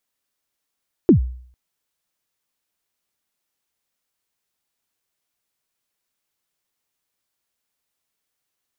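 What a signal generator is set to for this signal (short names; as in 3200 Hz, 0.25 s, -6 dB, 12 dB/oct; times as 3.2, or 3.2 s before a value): kick drum length 0.45 s, from 400 Hz, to 62 Hz, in 0.109 s, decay 0.56 s, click off, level -5 dB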